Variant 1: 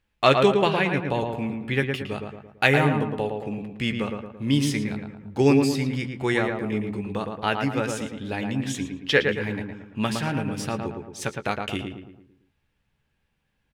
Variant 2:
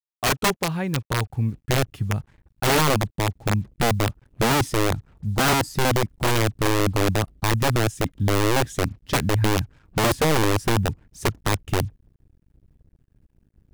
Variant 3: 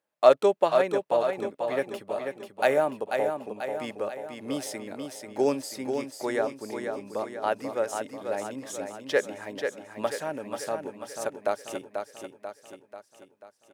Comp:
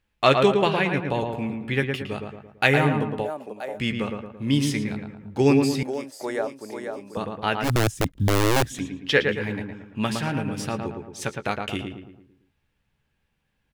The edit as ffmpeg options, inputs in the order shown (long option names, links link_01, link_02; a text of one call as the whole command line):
ffmpeg -i take0.wav -i take1.wav -i take2.wav -filter_complex "[2:a]asplit=2[link_01][link_02];[0:a]asplit=4[link_03][link_04][link_05][link_06];[link_03]atrim=end=3.31[link_07];[link_01]atrim=start=3.21:end=3.81[link_08];[link_04]atrim=start=3.71:end=5.832[link_09];[link_02]atrim=start=5.828:end=7.172[link_10];[link_05]atrim=start=7.168:end=7.72[link_11];[1:a]atrim=start=7.62:end=8.8[link_12];[link_06]atrim=start=8.7[link_13];[link_07][link_08]acrossfade=duration=0.1:curve1=tri:curve2=tri[link_14];[link_14][link_09]acrossfade=duration=0.1:curve1=tri:curve2=tri[link_15];[link_15][link_10]acrossfade=duration=0.004:curve1=hsin:curve2=hsin[link_16];[link_16][link_11]acrossfade=duration=0.004:curve1=hsin:curve2=hsin[link_17];[link_17][link_12]acrossfade=duration=0.1:curve1=tri:curve2=tri[link_18];[link_18][link_13]acrossfade=duration=0.1:curve1=tri:curve2=tri" out.wav